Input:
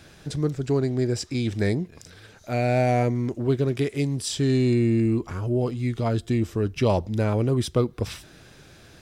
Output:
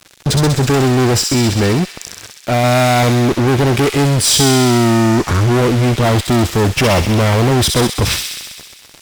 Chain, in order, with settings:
0:01.19–0:02.64: downward compressor 1.5 to 1, threshold −38 dBFS, peak gain reduction 7 dB
fuzz pedal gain 35 dB, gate −43 dBFS
delay with a high-pass on its return 65 ms, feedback 76%, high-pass 2,700 Hz, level −3.5 dB
level +2.5 dB

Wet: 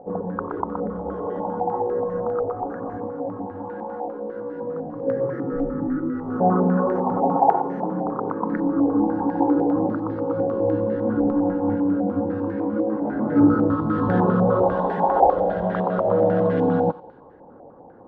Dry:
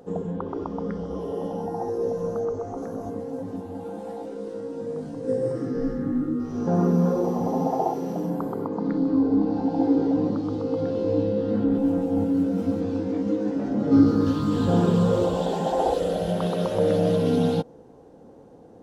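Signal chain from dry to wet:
wrong playback speed 24 fps film run at 25 fps
feedback echo with a high-pass in the loop 91 ms, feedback 56%, high-pass 680 Hz, level −15.5 dB
low-pass on a step sequencer 10 Hz 750–1,700 Hz

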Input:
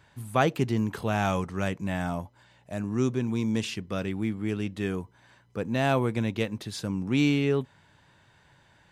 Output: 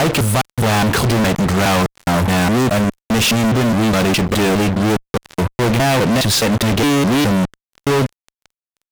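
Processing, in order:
slices reordered back to front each 207 ms, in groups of 3
fuzz pedal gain 49 dB, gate −50 dBFS

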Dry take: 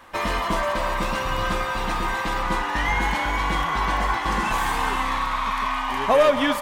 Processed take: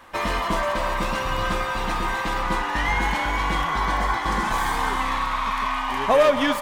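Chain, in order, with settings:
stylus tracing distortion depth 0.024 ms
0:03.72–0:05.01: notch filter 2,700 Hz, Q 7.7

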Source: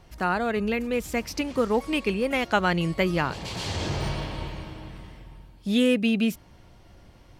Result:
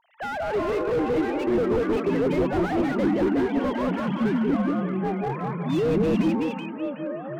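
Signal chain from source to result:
three sine waves on the formant tracks
0:02.05–0:03.67: high-shelf EQ 2,600 Hz −7 dB
delay with pitch and tempo change per echo 262 ms, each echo −5 semitones, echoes 3
delay that swaps between a low-pass and a high-pass 187 ms, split 1,000 Hz, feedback 53%, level −2 dB
slew-rate limiting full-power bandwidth 42 Hz

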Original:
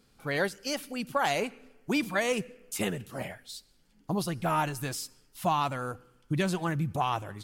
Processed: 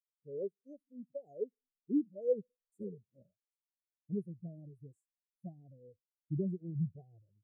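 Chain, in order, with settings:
dynamic equaliser 430 Hz, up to +5 dB, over −46 dBFS, Q 4.3
inverse Chebyshev band-stop filter 1,000–4,100 Hz, stop band 40 dB
every bin expanded away from the loudest bin 2.5 to 1
level −4 dB

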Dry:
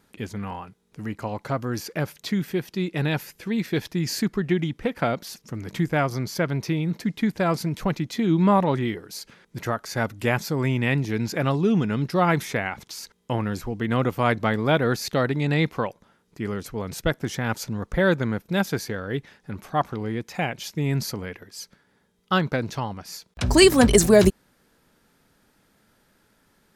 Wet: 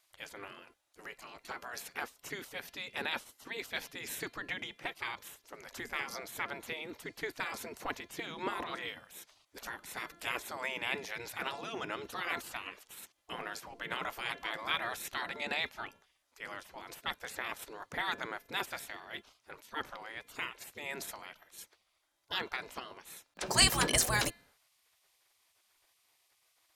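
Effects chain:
hum removal 343.2 Hz, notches 13
gate on every frequency bin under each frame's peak −15 dB weak
level −3 dB

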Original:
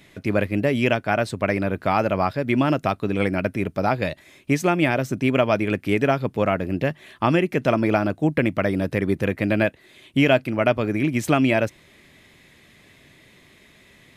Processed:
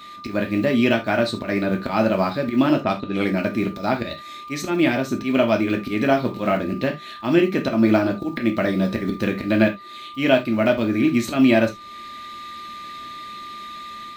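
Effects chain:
one scale factor per block 7 bits
thirty-one-band graphic EQ 200 Hz +8 dB, 315 Hz +5 dB, 4,000 Hz +12 dB, 10,000 Hz −8 dB
volume swells 111 ms
0:02.81–0:03.29: low-pass that shuts in the quiet parts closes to 960 Hz, open at −16 dBFS
0:06.07–0:06.51: double-tracking delay 25 ms −6.5 dB
steady tone 1,200 Hz −42 dBFS
automatic gain control gain up to 6 dB
reverb whose tail is shaped and stops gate 100 ms falling, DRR 2.5 dB
one half of a high-frequency compander encoder only
level −5.5 dB

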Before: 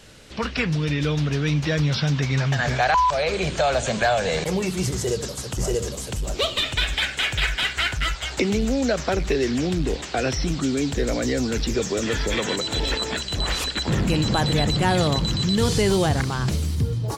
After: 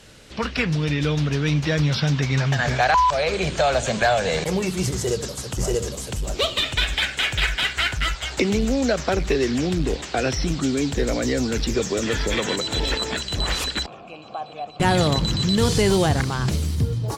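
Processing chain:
0:13.86–0:14.80: formant filter a
harmonic generator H 7 −33 dB, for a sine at −8 dBFS
level +1.5 dB

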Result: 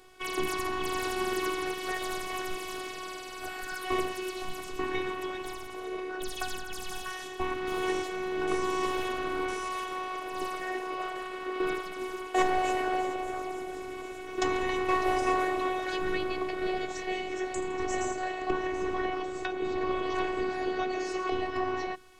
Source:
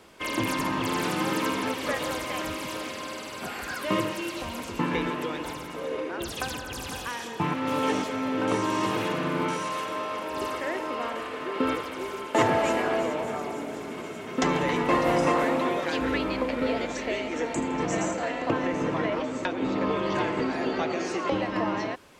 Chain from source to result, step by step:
parametric band 82 Hz +14.5 dB 0.94 octaves
mains-hum notches 50/100/150/200/250/300/350 Hz
phases set to zero 371 Hz
level −1.5 dB

